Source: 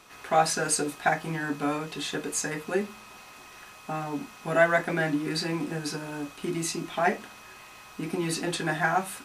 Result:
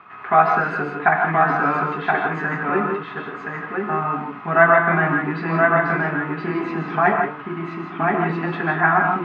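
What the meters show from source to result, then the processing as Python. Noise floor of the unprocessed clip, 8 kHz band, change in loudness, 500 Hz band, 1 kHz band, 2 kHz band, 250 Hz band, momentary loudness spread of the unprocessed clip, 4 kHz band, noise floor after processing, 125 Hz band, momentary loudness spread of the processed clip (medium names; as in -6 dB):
-49 dBFS, under -30 dB, +8.5 dB, +8.0 dB, +11.5 dB, +11.0 dB, +6.5 dB, 21 LU, no reading, -35 dBFS, +9.0 dB, 11 LU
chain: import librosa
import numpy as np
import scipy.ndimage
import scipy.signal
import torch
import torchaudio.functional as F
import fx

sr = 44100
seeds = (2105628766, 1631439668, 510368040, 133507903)

p1 = fx.cabinet(x, sr, low_hz=110.0, low_slope=12, high_hz=2200.0, hz=(290.0, 510.0, 1200.0), db=(-7, -10, 8))
p2 = p1 + fx.echo_single(p1, sr, ms=1023, db=-3.5, dry=0)
p3 = fx.rev_gated(p2, sr, seeds[0], gate_ms=190, shape='rising', drr_db=3.5)
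y = p3 * librosa.db_to_amplitude(7.5)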